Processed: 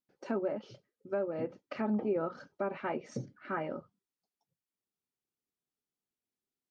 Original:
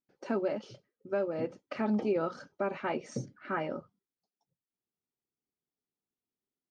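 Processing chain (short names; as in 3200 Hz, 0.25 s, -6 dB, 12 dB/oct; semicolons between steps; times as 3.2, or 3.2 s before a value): treble ducked by the level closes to 1700 Hz, closed at -27.5 dBFS; gain -2 dB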